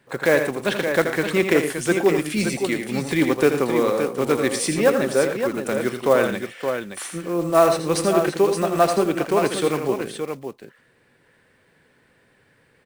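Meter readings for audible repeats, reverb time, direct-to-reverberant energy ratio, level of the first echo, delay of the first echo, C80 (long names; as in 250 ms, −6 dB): 3, no reverb audible, no reverb audible, −8.0 dB, 81 ms, no reverb audible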